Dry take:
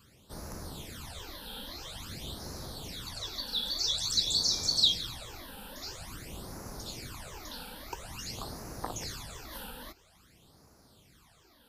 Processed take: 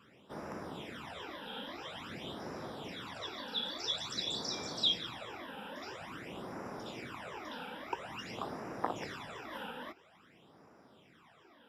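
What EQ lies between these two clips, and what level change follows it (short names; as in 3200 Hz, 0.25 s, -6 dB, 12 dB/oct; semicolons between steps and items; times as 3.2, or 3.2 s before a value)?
polynomial smoothing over 25 samples; HPF 210 Hz 12 dB/oct; +3.5 dB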